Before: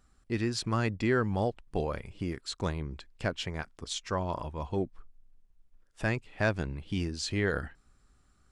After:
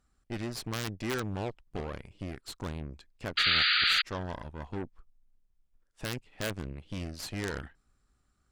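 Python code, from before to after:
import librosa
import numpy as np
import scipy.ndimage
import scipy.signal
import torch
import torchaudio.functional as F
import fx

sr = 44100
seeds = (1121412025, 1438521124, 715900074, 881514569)

y = (np.mod(10.0 ** (17.0 / 20.0) * x + 1.0, 2.0) - 1.0) / 10.0 ** (17.0 / 20.0)
y = fx.cheby_harmonics(y, sr, harmonics=(8,), levels_db=(-16,), full_scale_db=-17.0)
y = fx.spec_paint(y, sr, seeds[0], shape='noise', start_s=3.37, length_s=0.65, low_hz=1200.0, high_hz=4800.0, level_db=-19.0)
y = y * 10.0 ** (-6.5 / 20.0)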